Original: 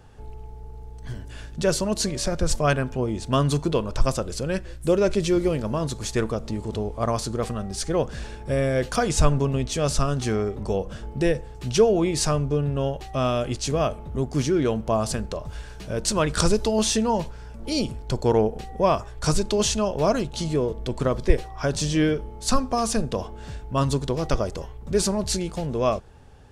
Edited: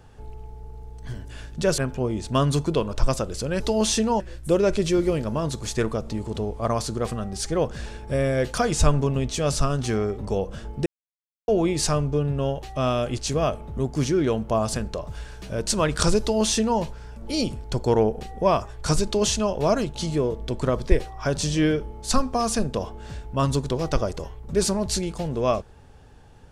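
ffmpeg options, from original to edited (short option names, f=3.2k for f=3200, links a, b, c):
-filter_complex "[0:a]asplit=6[a][b][c][d][e][f];[a]atrim=end=1.782[g];[b]atrim=start=2.758:end=4.582[h];[c]atrim=start=16.578:end=17.182[i];[d]atrim=start=4.578:end=11.24,asetpts=PTS-STARTPTS,afade=t=out:st=6.658:d=0.004:c=hsin[j];[e]atrim=start=11.24:end=11.86,asetpts=PTS-STARTPTS,volume=0[k];[f]atrim=start=11.86,asetpts=PTS-STARTPTS,afade=t=in:d=0.004:c=hsin[l];[g][h]acrossfade=d=0.004:c1=hsin:c2=hsin[m];[m][i]acrossfade=d=0.004:c1=hsin:c2=hsin[n];[j][k][l]concat=n=3:v=0:a=1[o];[n][o]acrossfade=d=0.004:c1=hsin:c2=hsin"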